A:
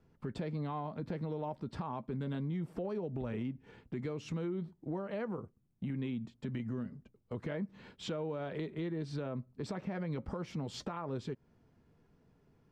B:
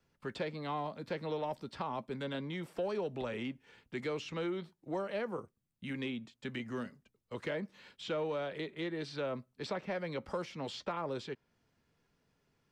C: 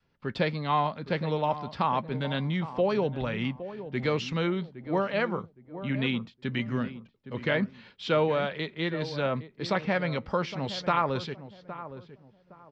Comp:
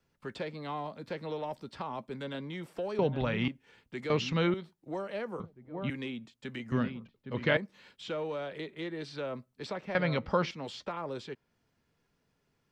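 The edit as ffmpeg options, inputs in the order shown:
-filter_complex "[2:a]asplit=5[s0][s1][s2][s3][s4];[1:a]asplit=6[s5][s6][s7][s8][s9][s10];[s5]atrim=end=2.992[s11];[s0]atrim=start=2.988:end=3.482[s12];[s6]atrim=start=3.478:end=4.102[s13];[s1]atrim=start=4.098:end=4.542[s14];[s7]atrim=start=4.538:end=5.402[s15];[s2]atrim=start=5.398:end=5.902[s16];[s8]atrim=start=5.898:end=6.722[s17];[s3]atrim=start=6.718:end=7.572[s18];[s9]atrim=start=7.568:end=9.952[s19];[s4]atrim=start=9.948:end=10.512[s20];[s10]atrim=start=10.508[s21];[s11][s12]acrossfade=d=0.004:c1=hsin:c2=hsin[s22];[s22][s13]acrossfade=d=0.004:c1=hsin:c2=hsin[s23];[s23][s14]acrossfade=d=0.004:c1=hsin:c2=hsin[s24];[s24][s15]acrossfade=d=0.004:c1=hsin:c2=hsin[s25];[s25][s16]acrossfade=d=0.004:c1=hsin:c2=hsin[s26];[s26][s17]acrossfade=d=0.004:c1=hsin:c2=hsin[s27];[s27][s18]acrossfade=d=0.004:c1=hsin:c2=hsin[s28];[s28][s19]acrossfade=d=0.004:c1=hsin:c2=hsin[s29];[s29][s20]acrossfade=d=0.004:c1=hsin:c2=hsin[s30];[s30][s21]acrossfade=d=0.004:c1=hsin:c2=hsin"

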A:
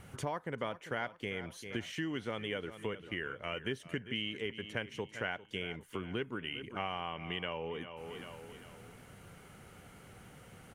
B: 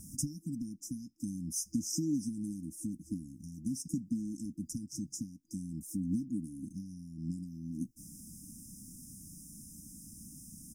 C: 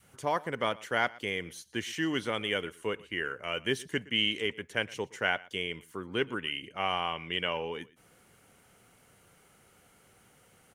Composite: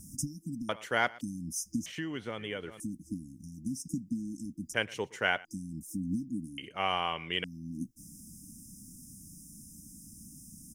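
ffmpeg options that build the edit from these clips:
-filter_complex "[2:a]asplit=3[s0][s1][s2];[1:a]asplit=5[s3][s4][s5][s6][s7];[s3]atrim=end=0.692[s8];[s0]atrim=start=0.688:end=1.212[s9];[s4]atrim=start=1.208:end=1.862[s10];[0:a]atrim=start=1.858:end=2.802[s11];[s5]atrim=start=2.798:end=4.742[s12];[s1]atrim=start=4.738:end=5.452[s13];[s6]atrim=start=5.448:end=6.582[s14];[s2]atrim=start=6.578:end=7.442[s15];[s7]atrim=start=7.438[s16];[s8][s9]acrossfade=d=0.004:c1=hsin:c2=hsin[s17];[s17][s10]acrossfade=d=0.004:c1=hsin:c2=hsin[s18];[s18][s11]acrossfade=d=0.004:c1=hsin:c2=hsin[s19];[s19][s12]acrossfade=d=0.004:c1=hsin:c2=hsin[s20];[s20][s13]acrossfade=d=0.004:c1=hsin:c2=hsin[s21];[s21][s14]acrossfade=d=0.004:c1=hsin:c2=hsin[s22];[s22][s15]acrossfade=d=0.004:c1=hsin:c2=hsin[s23];[s23][s16]acrossfade=d=0.004:c1=hsin:c2=hsin"

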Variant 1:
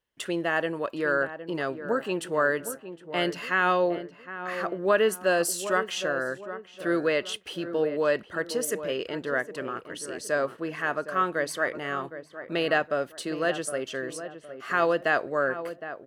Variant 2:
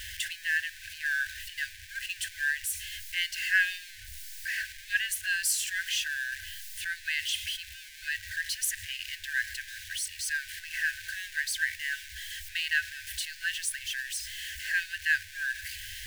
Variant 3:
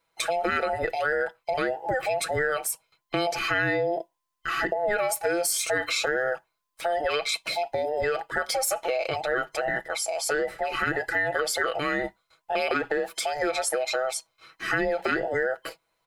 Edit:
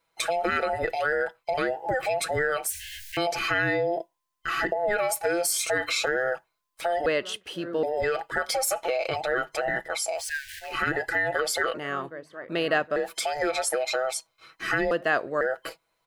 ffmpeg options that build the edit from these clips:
-filter_complex "[1:a]asplit=2[s0][s1];[0:a]asplit=3[s2][s3][s4];[2:a]asplit=6[s5][s6][s7][s8][s9][s10];[s5]atrim=end=2.702[s11];[s0]atrim=start=2.698:end=3.172[s12];[s6]atrim=start=3.168:end=7.062[s13];[s2]atrim=start=7.058:end=7.832[s14];[s7]atrim=start=7.828:end=10.3[s15];[s1]atrim=start=10.14:end=10.77[s16];[s8]atrim=start=10.61:end=11.742[s17];[s3]atrim=start=11.738:end=12.962[s18];[s9]atrim=start=12.958:end=14.912[s19];[s4]atrim=start=14.908:end=15.412[s20];[s10]atrim=start=15.408[s21];[s11][s12]acrossfade=d=0.004:c1=hsin:c2=hsin[s22];[s22][s13]acrossfade=d=0.004:c1=hsin:c2=hsin[s23];[s23][s14]acrossfade=d=0.004:c1=hsin:c2=hsin[s24];[s24][s15]acrossfade=d=0.004:c1=hsin:c2=hsin[s25];[s25][s16]acrossfade=d=0.16:c1=tri:c2=tri[s26];[s26][s17]acrossfade=d=0.16:c1=tri:c2=tri[s27];[s27][s18]acrossfade=d=0.004:c1=hsin:c2=hsin[s28];[s28][s19]acrossfade=d=0.004:c1=hsin:c2=hsin[s29];[s29][s20]acrossfade=d=0.004:c1=hsin:c2=hsin[s30];[s30][s21]acrossfade=d=0.004:c1=hsin:c2=hsin"

